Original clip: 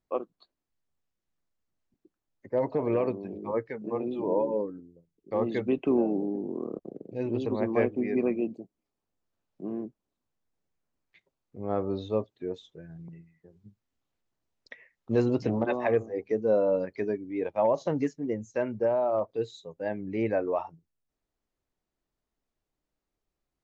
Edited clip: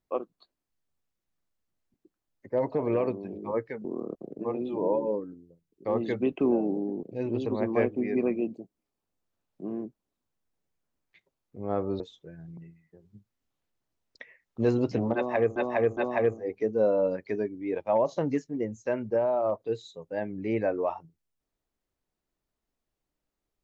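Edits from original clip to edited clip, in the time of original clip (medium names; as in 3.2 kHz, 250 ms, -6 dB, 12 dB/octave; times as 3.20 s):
6.49–7.03 s: move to 3.85 s
12.00–12.51 s: delete
15.66–16.07 s: loop, 3 plays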